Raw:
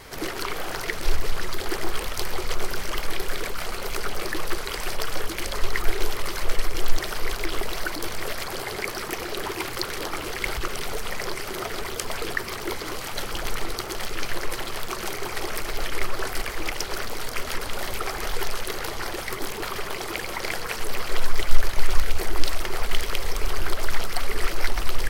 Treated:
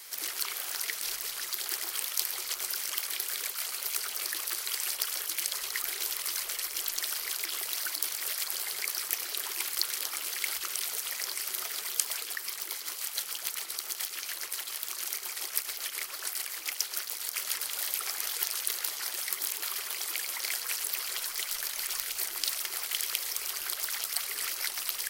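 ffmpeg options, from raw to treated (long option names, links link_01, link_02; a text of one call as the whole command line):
ffmpeg -i in.wav -filter_complex "[0:a]asettb=1/sr,asplit=3[link_01][link_02][link_03];[link_01]atrim=end=12.194[link_04];[link_02]atrim=start=12.19:end=17.34,asetpts=PTS-STARTPTS,afade=type=in:duration=0.004:curve=qsin,afade=type=out:start_time=5.146:duration=0.004:curve=qsin,tremolo=f=7.1:d=0.46[link_05];[link_03]atrim=start=17.336[link_06];[link_04][link_05]acrossfade=duration=0.004:curve1=hsin:curve2=qsin[link_07];[link_07][link_06]acrossfade=duration=0.004:curve1=qsin:curve2=hsin,aderivative,volume=4dB" out.wav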